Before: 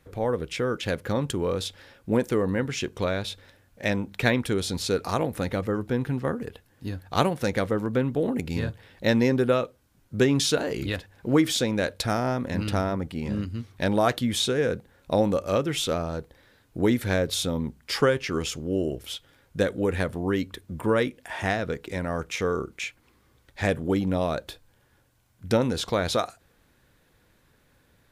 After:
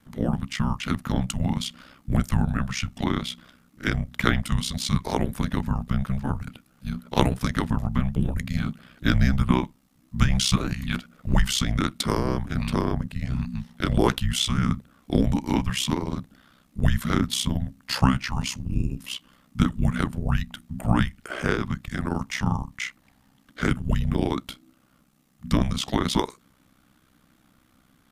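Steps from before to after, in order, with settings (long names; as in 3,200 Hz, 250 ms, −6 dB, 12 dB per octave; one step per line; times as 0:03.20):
frequency shifter −300 Hz
ring modulation 32 Hz
level +4.5 dB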